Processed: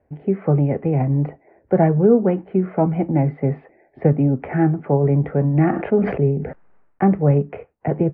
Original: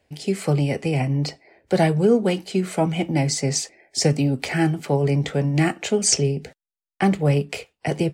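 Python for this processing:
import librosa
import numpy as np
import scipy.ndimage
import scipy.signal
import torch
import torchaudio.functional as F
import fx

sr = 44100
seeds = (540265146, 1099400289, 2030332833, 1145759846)

y = scipy.signal.sosfilt(scipy.signal.bessel(8, 1100.0, 'lowpass', norm='mag', fs=sr, output='sos'), x)
y = fx.sustainer(y, sr, db_per_s=67.0, at=(5.49, 7.06))
y = F.gain(torch.from_numpy(y), 3.5).numpy()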